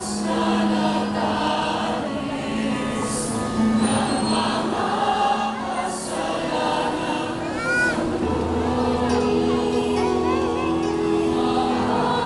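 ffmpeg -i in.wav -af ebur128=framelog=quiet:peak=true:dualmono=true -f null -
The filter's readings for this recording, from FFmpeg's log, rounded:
Integrated loudness:
  I:         -19.1 LUFS
  Threshold: -29.1 LUFS
Loudness range:
  LRA:         1.9 LU
  Threshold: -39.2 LUFS
  LRA low:   -20.1 LUFS
  LRA high:  -18.2 LUFS
True peak:
  Peak:       -9.1 dBFS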